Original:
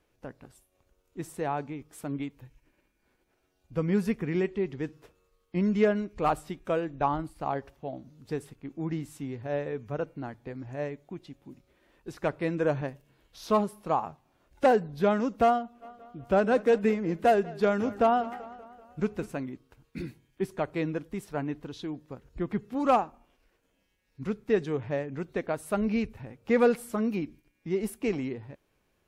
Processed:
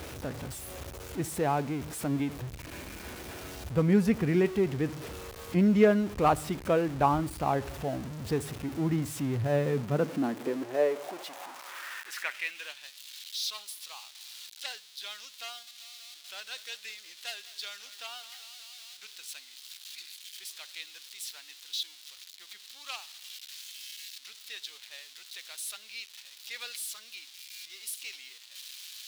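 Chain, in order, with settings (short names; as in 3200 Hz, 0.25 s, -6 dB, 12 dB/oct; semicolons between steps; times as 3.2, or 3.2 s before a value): zero-crossing step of -38 dBFS; high-pass sweep 69 Hz -> 3800 Hz, 9.08–12.87; gain +1.5 dB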